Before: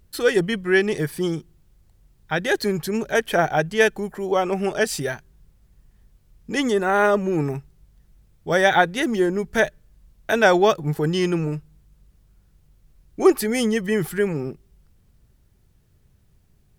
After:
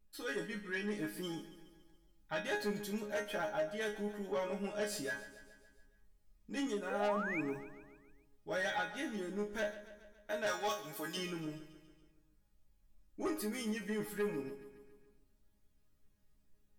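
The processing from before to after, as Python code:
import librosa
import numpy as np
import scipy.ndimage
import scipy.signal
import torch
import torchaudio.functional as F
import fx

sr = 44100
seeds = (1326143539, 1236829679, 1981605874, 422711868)

y = fx.tilt_eq(x, sr, slope=3.5, at=(10.46, 11.17))
y = fx.rider(y, sr, range_db=10, speed_s=0.5)
y = fx.resonator_bank(y, sr, root=56, chord='sus4', decay_s=0.26)
y = 10.0 ** (-31.0 / 20.0) * np.tanh(y / 10.0 ** (-31.0 / 20.0))
y = fx.spec_paint(y, sr, seeds[0], shape='rise', start_s=6.9, length_s=0.51, low_hz=460.0, high_hz=2600.0, level_db=-41.0)
y = fx.echo_feedback(y, sr, ms=140, feedback_pct=58, wet_db=-14.5)
y = F.gain(torch.from_numpy(y), 1.0).numpy()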